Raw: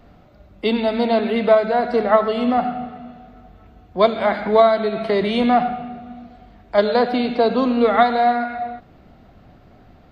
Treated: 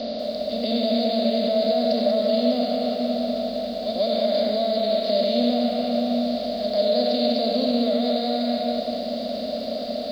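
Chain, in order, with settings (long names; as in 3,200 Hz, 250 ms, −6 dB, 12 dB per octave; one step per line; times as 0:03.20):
compressor on every frequency bin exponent 0.4
tilt shelving filter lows −6 dB, about 1,300 Hz
echo ahead of the sound 145 ms −12.5 dB
brickwall limiter −11 dBFS, peak gain reduction 10.5 dB
drawn EQ curve 100 Hz 0 dB, 160 Hz −10 dB, 230 Hz +12 dB, 390 Hz −9 dB, 590 Hz +14 dB, 890 Hz −20 dB, 1,400 Hz −18 dB, 2,700 Hz −9 dB, 4,900 Hz +13 dB, 9,200 Hz −20 dB
feedback echo at a low word length 191 ms, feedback 35%, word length 7 bits, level −6.5 dB
level −7.5 dB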